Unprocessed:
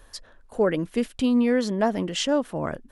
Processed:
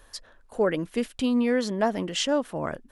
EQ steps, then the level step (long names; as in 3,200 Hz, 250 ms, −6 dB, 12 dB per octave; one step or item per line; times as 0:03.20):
low-shelf EQ 410 Hz −4 dB
0.0 dB